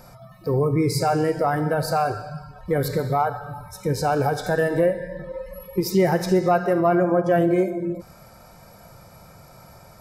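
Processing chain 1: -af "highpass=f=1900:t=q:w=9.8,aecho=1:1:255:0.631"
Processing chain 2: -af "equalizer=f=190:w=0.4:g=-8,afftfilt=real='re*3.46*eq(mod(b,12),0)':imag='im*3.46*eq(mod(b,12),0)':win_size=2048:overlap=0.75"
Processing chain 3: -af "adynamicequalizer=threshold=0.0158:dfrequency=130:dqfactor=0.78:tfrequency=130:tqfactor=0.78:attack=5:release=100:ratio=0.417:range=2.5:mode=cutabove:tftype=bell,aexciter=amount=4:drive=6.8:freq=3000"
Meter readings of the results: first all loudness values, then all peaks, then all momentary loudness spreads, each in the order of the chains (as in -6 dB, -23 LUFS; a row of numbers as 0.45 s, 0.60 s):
-23.5 LUFS, -28.0 LUFS, -20.5 LUFS; -8.5 dBFS, -10.5 dBFS, -1.5 dBFS; 15 LU, 17 LU, 21 LU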